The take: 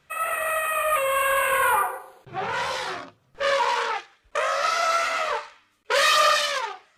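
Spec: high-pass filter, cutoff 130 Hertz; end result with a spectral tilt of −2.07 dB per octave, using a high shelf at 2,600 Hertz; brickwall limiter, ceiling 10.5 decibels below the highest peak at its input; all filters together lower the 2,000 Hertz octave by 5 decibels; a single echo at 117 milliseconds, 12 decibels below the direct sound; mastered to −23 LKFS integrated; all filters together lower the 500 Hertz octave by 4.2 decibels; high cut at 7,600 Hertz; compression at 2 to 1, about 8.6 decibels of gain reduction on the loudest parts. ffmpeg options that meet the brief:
ffmpeg -i in.wav -af "highpass=130,lowpass=7600,equalizer=frequency=500:width_type=o:gain=-4.5,equalizer=frequency=2000:width_type=o:gain=-3.5,highshelf=frequency=2600:gain=-6,acompressor=threshold=-35dB:ratio=2,alimiter=level_in=7.5dB:limit=-24dB:level=0:latency=1,volume=-7.5dB,aecho=1:1:117:0.251,volume=16.5dB" out.wav

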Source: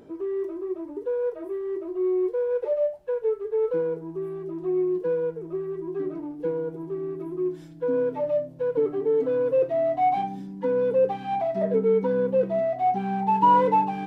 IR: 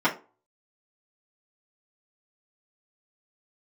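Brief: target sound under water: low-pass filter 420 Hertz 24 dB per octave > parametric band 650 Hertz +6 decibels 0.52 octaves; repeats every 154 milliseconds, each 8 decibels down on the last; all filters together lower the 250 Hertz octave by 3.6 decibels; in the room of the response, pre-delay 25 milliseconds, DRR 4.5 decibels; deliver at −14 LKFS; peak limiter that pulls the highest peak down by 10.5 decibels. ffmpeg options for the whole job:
-filter_complex "[0:a]equalizer=frequency=250:width_type=o:gain=-5.5,alimiter=limit=-20.5dB:level=0:latency=1,aecho=1:1:154|308|462|616|770:0.398|0.159|0.0637|0.0255|0.0102,asplit=2[link_01][link_02];[1:a]atrim=start_sample=2205,adelay=25[link_03];[link_02][link_03]afir=irnorm=-1:irlink=0,volume=-20dB[link_04];[link_01][link_04]amix=inputs=2:normalize=0,lowpass=frequency=420:width=0.5412,lowpass=frequency=420:width=1.3066,equalizer=frequency=650:width_type=o:width=0.52:gain=6,volume=16.5dB"

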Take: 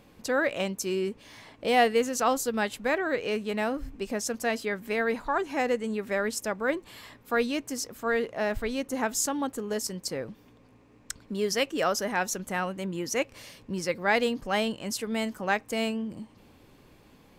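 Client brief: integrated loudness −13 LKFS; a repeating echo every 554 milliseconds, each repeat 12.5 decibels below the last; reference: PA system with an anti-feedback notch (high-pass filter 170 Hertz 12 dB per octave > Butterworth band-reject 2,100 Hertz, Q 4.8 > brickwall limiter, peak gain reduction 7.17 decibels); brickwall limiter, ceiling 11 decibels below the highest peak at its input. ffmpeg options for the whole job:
ffmpeg -i in.wav -af "alimiter=limit=-21.5dB:level=0:latency=1,highpass=170,asuperstop=centerf=2100:order=8:qfactor=4.8,aecho=1:1:554|1108|1662:0.237|0.0569|0.0137,volume=22.5dB,alimiter=limit=-3.5dB:level=0:latency=1" out.wav

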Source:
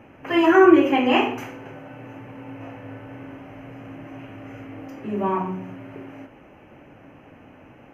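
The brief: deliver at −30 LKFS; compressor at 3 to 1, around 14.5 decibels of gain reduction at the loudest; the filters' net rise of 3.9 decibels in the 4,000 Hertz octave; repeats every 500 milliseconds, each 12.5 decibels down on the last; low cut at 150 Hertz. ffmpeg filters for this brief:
ffmpeg -i in.wav -af "highpass=150,equalizer=frequency=4000:width_type=o:gain=6.5,acompressor=threshold=-29dB:ratio=3,aecho=1:1:500|1000|1500:0.237|0.0569|0.0137,volume=3.5dB" out.wav

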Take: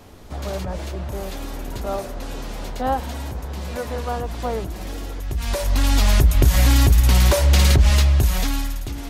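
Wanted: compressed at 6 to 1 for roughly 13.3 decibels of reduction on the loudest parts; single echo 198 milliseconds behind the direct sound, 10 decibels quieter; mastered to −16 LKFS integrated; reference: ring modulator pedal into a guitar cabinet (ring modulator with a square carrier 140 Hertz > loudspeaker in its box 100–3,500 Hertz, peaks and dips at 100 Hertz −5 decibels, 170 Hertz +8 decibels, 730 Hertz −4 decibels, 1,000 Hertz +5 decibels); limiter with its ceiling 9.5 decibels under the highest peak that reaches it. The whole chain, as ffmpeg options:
ffmpeg -i in.wav -af "acompressor=threshold=-25dB:ratio=6,alimiter=level_in=3dB:limit=-24dB:level=0:latency=1,volume=-3dB,aecho=1:1:198:0.316,aeval=exprs='val(0)*sgn(sin(2*PI*140*n/s))':channel_layout=same,highpass=100,equalizer=frequency=100:width_type=q:width=4:gain=-5,equalizer=frequency=170:width_type=q:width=4:gain=8,equalizer=frequency=730:width_type=q:width=4:gain=-4,equalizer=frequency=1000:width_type=q:width=4:gain=5,lowpass=frequency=3500:width=0.5412,lowpass=frequency=3500:width=1.3066,volume=17dB" out.wav

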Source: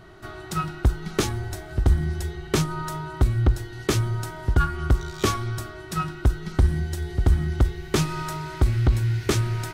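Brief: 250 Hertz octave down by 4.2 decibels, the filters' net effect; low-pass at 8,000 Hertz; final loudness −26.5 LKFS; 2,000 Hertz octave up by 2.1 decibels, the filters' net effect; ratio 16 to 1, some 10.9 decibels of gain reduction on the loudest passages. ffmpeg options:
ffmpeg -i in.wav -af "lowpass=8000,equalizer=frequency=250:width_type=o:gain=-7.5,equalizer=frequency=2000:width_type=o:gain=3,acompressor=threshold=-24dB:ratio=16,volume=5dB" out.wav

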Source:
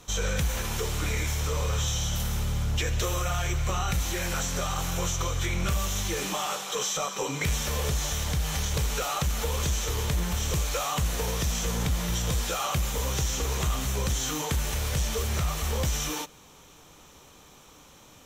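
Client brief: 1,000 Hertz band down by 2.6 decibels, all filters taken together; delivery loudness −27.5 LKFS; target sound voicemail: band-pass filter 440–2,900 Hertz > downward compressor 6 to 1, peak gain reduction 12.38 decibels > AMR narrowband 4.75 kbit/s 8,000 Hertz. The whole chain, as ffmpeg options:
ffmpeg -i in.wav -af "highpass=440,lowpass=2900,equalizer=frequency=1000:width_type=o:gain=-3,acompressor=threshold=-42dB:ratio=6,volume=23dB" -ar 8000 -c:a libopencore_amrnb -b:a 4750 out.amr

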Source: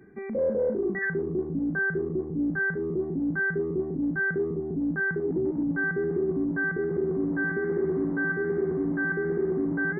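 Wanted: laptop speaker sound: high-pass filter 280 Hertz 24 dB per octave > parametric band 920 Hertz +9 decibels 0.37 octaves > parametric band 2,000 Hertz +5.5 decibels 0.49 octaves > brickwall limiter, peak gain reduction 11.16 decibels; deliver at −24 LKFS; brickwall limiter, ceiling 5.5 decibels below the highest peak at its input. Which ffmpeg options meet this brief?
ffmpeg -i in.wav -af "alimiter=limit=-24dB:level=0:latency=1,highpass=frequency=280:width=0.5412,highpass=frequency=280:width=1.3066,equalizer=frequency=920:width_type=o:width=0.37:gain=9,equalizer=frequency=2000:width_type=o:width=0.49:gain=5.5,volume=12dB,alimiter=limit=-18.5dB:level=0:latency=1" out.wav

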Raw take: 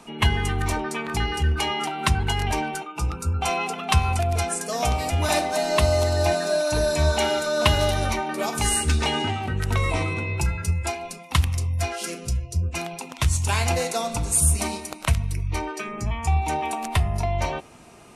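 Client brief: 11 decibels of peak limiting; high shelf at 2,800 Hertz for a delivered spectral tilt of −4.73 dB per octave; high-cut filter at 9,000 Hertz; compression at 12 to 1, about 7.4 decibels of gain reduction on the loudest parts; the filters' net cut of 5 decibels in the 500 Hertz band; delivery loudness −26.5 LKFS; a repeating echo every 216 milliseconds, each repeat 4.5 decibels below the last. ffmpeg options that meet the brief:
ffmpeg -i in.wav -af "lowpass=9000,equalizer=frequency=500:width_type=o:gain=-6.5,highshelf=frequency=2800:gain=-6,acompressor=threshold=-21dB:ratio=12,alimiter=limit=-20.5dB:level=0:latency=1,aecho=1:1:216|432|648|864|1080|1296|1512|1728|1944:0.596|0.357|0.214|0.129|0.0772|0.0463|0.0278|0.0167|0.01,volume=2.5dB" out.wav

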